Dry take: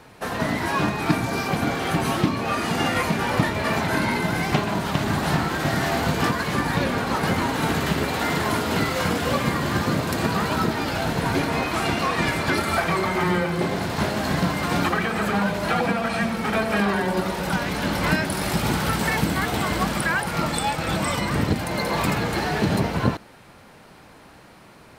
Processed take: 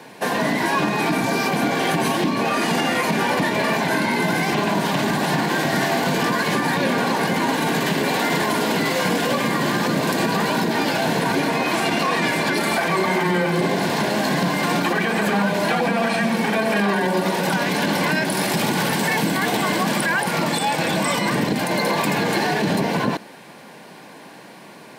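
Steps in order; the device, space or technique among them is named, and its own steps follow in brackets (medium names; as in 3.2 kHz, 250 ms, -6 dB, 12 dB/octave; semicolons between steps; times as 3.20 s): PA system with an anti-feedback notch (high-pass 160 Hz 24 dB/octave; Butterworth band-stop 1.3 kHz, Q 6.4; peak limiter -18.5 dBFS, peak gain reduction 10.5 dB); trim +7 dB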